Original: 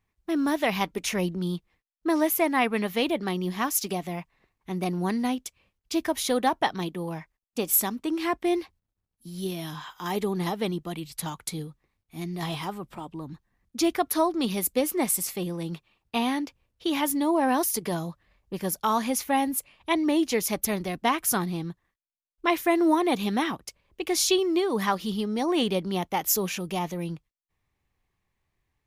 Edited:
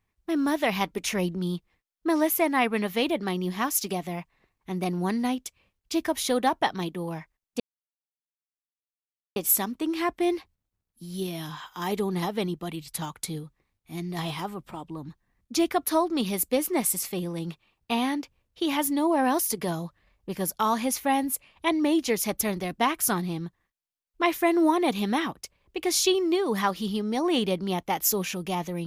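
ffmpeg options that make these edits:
-filter_complex "[0:a]asplit=2[s0][s1];[s0]atrim=end=7.6,asetpts=PTS-STARTPTS,afade=t=out:st=7.596:d=0.004:c=hsin,apad=pad_dur=1.76[s2];[s1]atrim=start=7.6,asetpts=PTS-STARTPTS,afade=t=in:d=0.004:c=hsin[s3];[s2][s3]concat=n=2:v=0:a=1"

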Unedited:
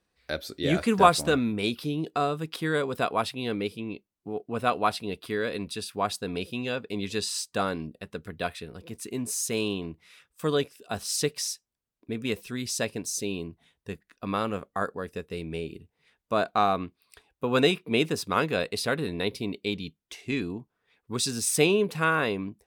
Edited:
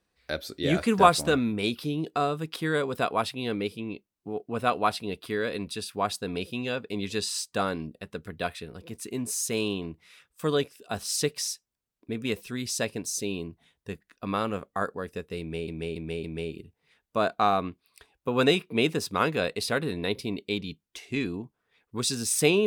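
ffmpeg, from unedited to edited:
-filter_complex "[0:a]asplit=4[s0][s1][s2][s3];[s0]atrim=end=15.682[s4];[s1]atrim=start=15.398:end=15.682[s5];[s2]atrim=start=15.398:end=15.682[s6];[s3]atrim=start=15.398[s7];[s4][s5]acrossfade=d=0.004:c1=hsin:c2=hsin[s8];[s8][s6]acrossfade=d=0.004:c1=hsin:c2=hsin[s9];[s9][s7]acrossfade=d=0.004:c1=hsin:c2=hsin"

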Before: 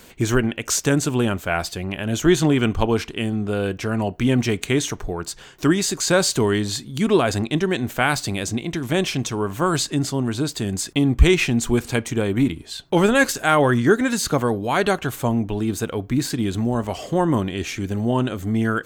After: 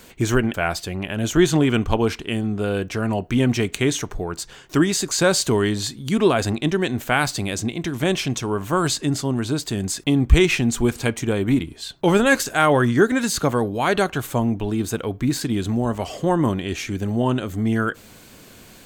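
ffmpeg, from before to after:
-filter_complex "[0:a]asplit=2[s0][s1];[s0]atrim=end=0.542[s2];[s1]atrim=start=1.428[s3];[s2][s3]acrossfade=d=0.004:c1=hsin:c2=hsin"

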